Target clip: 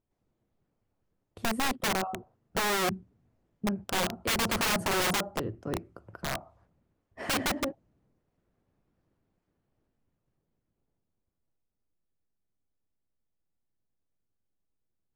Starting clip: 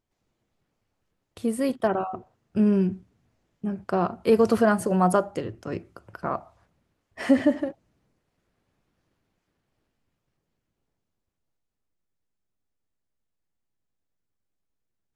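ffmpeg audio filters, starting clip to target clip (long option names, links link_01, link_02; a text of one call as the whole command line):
ffmpeg -i in.wav -af "tiltshelf=frequency=1400:gain=6,aeval=exprs='(mod(6.31*val(0)+1,2)-1)/6.31':channel_layout=same,volume=-6.5dB" out.wav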